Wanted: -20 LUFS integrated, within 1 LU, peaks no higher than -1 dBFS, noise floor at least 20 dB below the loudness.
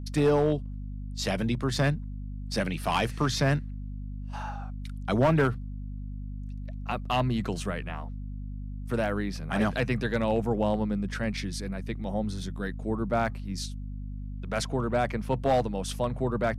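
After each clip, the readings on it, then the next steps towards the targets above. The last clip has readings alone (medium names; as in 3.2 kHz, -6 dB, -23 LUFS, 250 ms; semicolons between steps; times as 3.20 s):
clipped samples 0.4%; clipping level -17.0 dBFS; hum 50 Hz; highest harmonic 250 Hz; hum level -34 dBFS; loudness -30.0 LUFS; peak level -17.0 dBFS; loudness target -20.0 LUFS
-> clip repair -17 dBFS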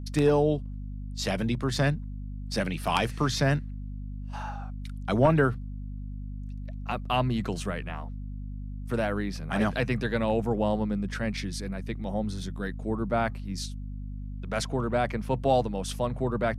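clipped samples 0.0%; hum 50 Hz; highest harmonic 250 Hz; hum level -34 dBFS
-> hum notches 50/100/150/200/250 Hz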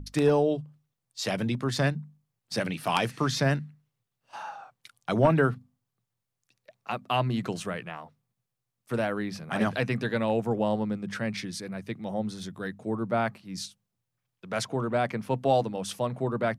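hum not found; loudness -29.0 LUFS; peak level -8.0 dBFS; loudness target -20.0 LUFS
-> trim +9 dB; peak limiter -1 dBFS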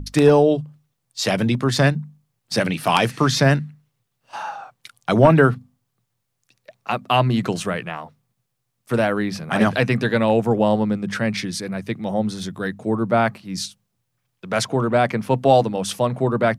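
loudness -20.0 LUFS; peak level -1.0 dBFS; noise floor -75 dBFS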